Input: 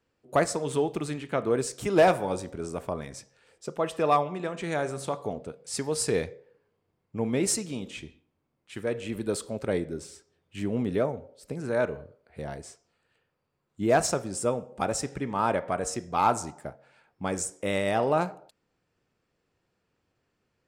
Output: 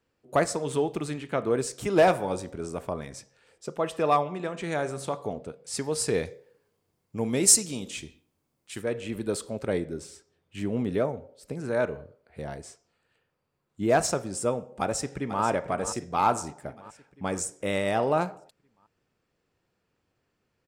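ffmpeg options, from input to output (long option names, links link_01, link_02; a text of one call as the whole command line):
ffmpeg -i in.wav -filter_complex "[0:a]asettb=1/sr,asplit=3[link_01][link_02][link_03];[link_01]atrim=end=6.254[link_04];[link_02]atrim=start=6.25:end=8.82,asetpts=PTS-STARTPTS,afade=type=in:duration=0.004:curve=qsin,afade=type=out:start_time=2.566:duration=0.004:curve=qsin,bass=frequency=250:gain=0,treble=frequency=4000:gain=11[link_05];[link_03]atrim=start=8.816[link_06];[link_04][link_05]acrossfade=duration=0.004:curve1=hsin:curve2=qsin[link_07];[link_07][link_06]acrossfade=duration=0.004:curve1=qsin:curve2=hsin,asplit=2[link_08][link_09];[link_09]afade=type=in:start_time=14.8:duration=0.01,afade=type=out:start_time=15.43:duration=0.01,aecho=0:1:490|980|1470|1960|2450|2940|3430:0.281838|0.169103|0.101462|0.0608771|0.0365262|0.0219157|0.0131494[link_10];[link_08][link_10]amix=inputs=2:normalize=0" out.wav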